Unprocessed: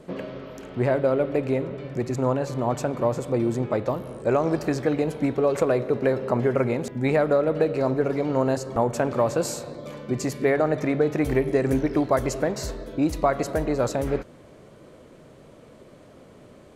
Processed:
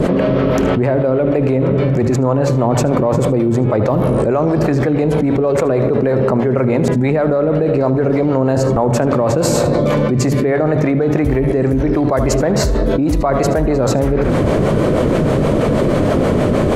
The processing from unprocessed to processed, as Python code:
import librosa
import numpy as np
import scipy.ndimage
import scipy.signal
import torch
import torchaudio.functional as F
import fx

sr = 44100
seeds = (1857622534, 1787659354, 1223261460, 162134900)

y = fx.high_shelf(x, sr, hz=2600.0, db=-8.5)
y = fx.harmonic_tremolo(y, sr, hz=6.3, depth_pct=50, crossover_hz=470.0)
y = fx.low_shelf(y, sr, hz=210.0, db=5.0)
y = fx.hum_notches(y, sr, base_hz=60, count=2)
y = y + 10.0 ** (-15.5 / 20.0) * np.pad(y, (int(77 * sr / 1000.0), 0))[:len(y)]
y = fx.env_flatten(y, sr, amount_pct=100)
y = y * librosa.db_to_amplitude(4.0)